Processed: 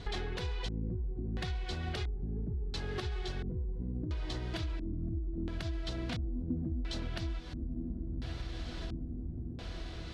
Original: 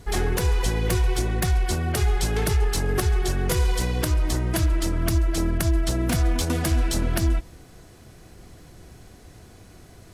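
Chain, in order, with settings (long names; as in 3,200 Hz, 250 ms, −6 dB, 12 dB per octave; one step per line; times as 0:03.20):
feedback delay with all-pass diffusion 1,010 ms, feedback 53%, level −13 dB
downward compressor 6 to 1, threshold −35 dBFS, peak gain reduction 17.5 dB
auto-filter low-pass square 0.73 Hz 250–3,800 Hz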